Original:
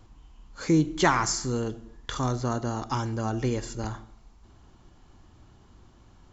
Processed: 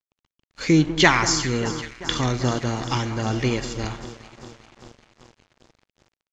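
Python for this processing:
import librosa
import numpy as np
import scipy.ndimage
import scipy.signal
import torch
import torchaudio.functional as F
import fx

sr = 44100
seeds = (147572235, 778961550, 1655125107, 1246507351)

p1 = fx.high_shelf_res(x, sr, hz=1700.0, db=8.0, q=1.5)
p2 = p1 + fx.echo_alternate(p1, sr, ms=196, hz=1700.0, feedback_pct=86, wet_db=-12.0, dry=0)
p3 = np.sign(p2) * np.maximum(np.abs(p2) - 10.0 ** (-42.5 / 20.0), 0.0)
p4 = fx.air_absorb(p3, sr, metres=110.0)
y = p4 * 10.0 ** (5.5 / 20.0)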